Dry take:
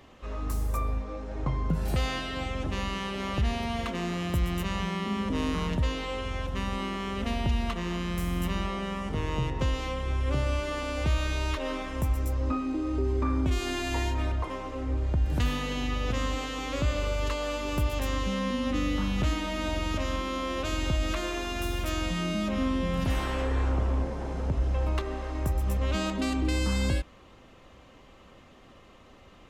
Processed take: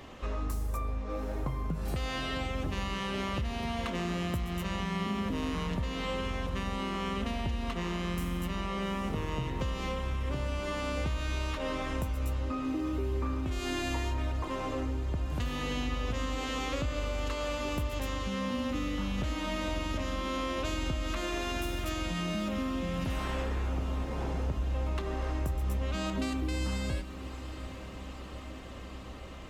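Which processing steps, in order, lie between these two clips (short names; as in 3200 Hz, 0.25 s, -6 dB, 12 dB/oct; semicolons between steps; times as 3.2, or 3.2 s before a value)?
compressor 6:1, threshold -36 dBFS, peak gain reduction 14 dB; diffused feedback echo 0.816 s, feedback 74%, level -13.5 dB; gain +5.5 dB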